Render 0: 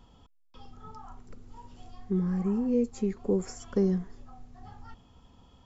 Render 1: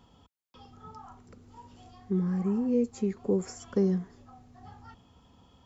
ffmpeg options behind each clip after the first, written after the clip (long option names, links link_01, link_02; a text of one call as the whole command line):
ffmpeg -i in.wav -af "highpass=68" out.wav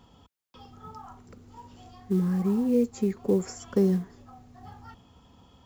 ffmpeg -i in.wav -af "acrusher=bits=8:mode=log:mix=0:aa=0.000001,volume=3dB" out.wav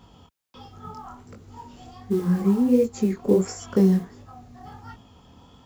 ffmpeg -i in.wav -af "flanger=delay=18.5:depth=7.4:speed=1.4,volume=8dB" out.wav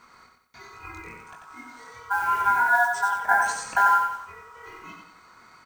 ffmpeg -i in.wav -af "aeval=exprs='val(0)*sin(2*PI*1200*n/s)':channel_layout=same,highshelf=frequency=6200:gain=8,aecho=1:1:91|182|273|364|455:0.562|0.225|0.09|0.036|0.0144" out.wav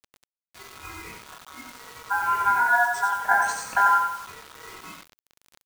ffmpeg -i in.wav -af "acrusher=bits=6:mix=0:aa=0.000001" out.wav